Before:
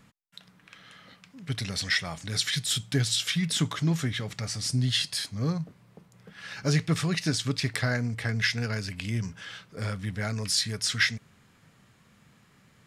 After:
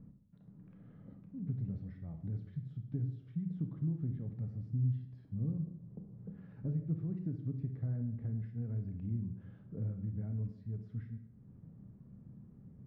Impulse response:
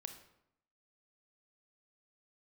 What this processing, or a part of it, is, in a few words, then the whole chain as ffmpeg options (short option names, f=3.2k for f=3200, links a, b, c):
television next door: -filter_complex "[0:a]acompressor=threshold=-45dB:ratio=3,lowpass=250[a];[1:a]atrim=start_sample=2205[b];[a][b]afir=irnorm=-1:irlink=0,volume=12dB"